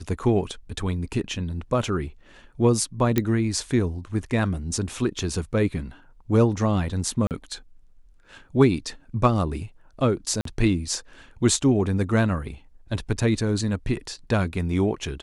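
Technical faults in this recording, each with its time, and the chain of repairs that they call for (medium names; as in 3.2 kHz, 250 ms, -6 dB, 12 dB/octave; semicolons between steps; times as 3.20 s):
3.18 s: pop -7 dBFS
7.27–7.31 s: dropout 38 ms
10.41–10.45 s: dropout 43 ms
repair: de-click; interpolate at 7.27 s, 38 ms; interpolate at 10.41 s, 43 ms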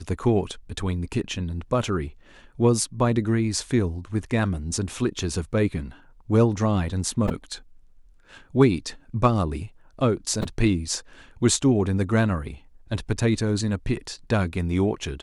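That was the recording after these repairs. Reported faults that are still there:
nothing left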